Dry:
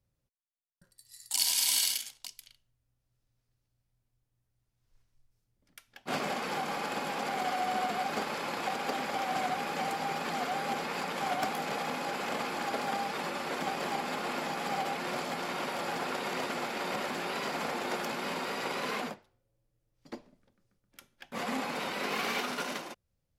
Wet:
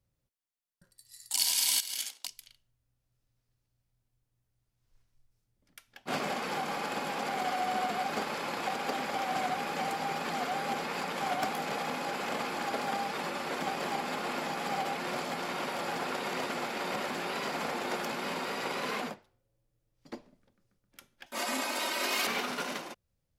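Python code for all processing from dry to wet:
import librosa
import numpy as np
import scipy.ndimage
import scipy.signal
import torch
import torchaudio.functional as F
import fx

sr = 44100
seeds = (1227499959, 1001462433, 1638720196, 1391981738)

y = fx.chain(x, sr, fx.highpass(hz=240.0, slope=24),
    fx.over_compress(threshold_db=-37.0, ratio=-1.0), at=(1.8, 2.27))
y = fx.chain(y, sr, fx.bass_treble(bass_db=-12, treble_db=9),
    fx.comb(ms=3.2, depth=0.73), at=(21.26, 22.27))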